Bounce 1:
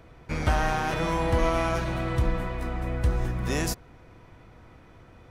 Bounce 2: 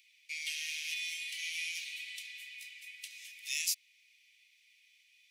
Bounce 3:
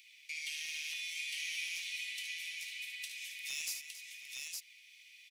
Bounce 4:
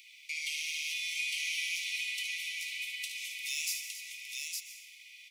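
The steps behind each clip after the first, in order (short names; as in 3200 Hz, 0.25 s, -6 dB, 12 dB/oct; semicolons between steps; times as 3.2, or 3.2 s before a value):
steep high-pass 2200 Hz 72 dB/oct; gain +1.5 dB
compressor 2:1, threshold -52 dBFS, peak gain reduction 13 dB; hard clip -37.5 dBFS, distortion -23 dB; on a send: tapped delay 58/74/274/723/862 ms -9.5/-9/-13.5/-16/-3.5 dB; on the sum: gain +5.5 dB
brick-wall FIR high-pass 1900 Hz; plate-style reverb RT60 1.9 s, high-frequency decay 0.5×, pre-delay 0.11 s, DRR 7.5 dB; gain +4.5 dB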